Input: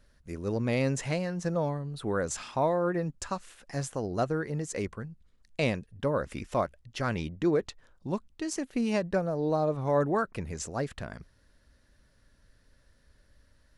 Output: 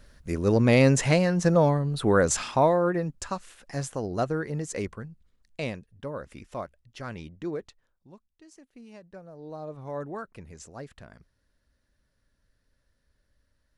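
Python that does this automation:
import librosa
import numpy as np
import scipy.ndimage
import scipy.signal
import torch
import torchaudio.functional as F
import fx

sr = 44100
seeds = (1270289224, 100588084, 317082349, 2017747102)

y = fx.gain(x, sr, db=fx.line((2.33, 9.0), (3.09, 1.5), (4.79, 1.5), (6.03, -7.0), (7.56, -7.0), (8.15, -19.5), (9.01, -19.5), (9.78, -9.0)))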